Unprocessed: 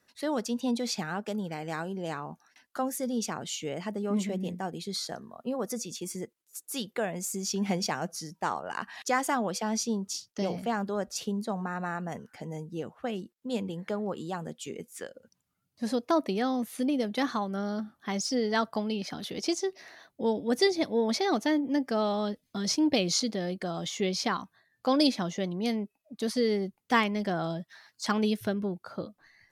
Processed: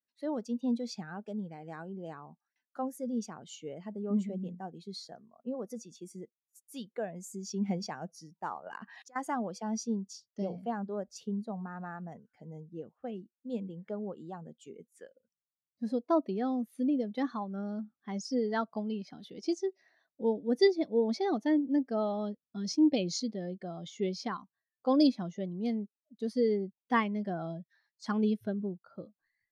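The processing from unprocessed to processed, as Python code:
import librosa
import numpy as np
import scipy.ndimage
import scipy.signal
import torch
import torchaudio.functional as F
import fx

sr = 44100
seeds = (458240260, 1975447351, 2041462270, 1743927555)

y = fx.over_compress(x, sr, threshold_db=-38.0, ratio=-1.0, at=(8.66, 9.16))
y = fx.spectral_expand(y, sr, expansion=1.5)
y = y * librosa.db_to_amplitude(-3.0)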